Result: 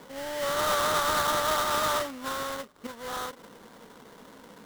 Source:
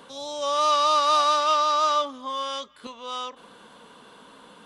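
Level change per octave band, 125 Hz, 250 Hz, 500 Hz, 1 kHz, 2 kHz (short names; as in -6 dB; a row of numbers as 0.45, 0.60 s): n/a, +2.5 dB, -2.5 dB, -7.0 dB, +5.0 dB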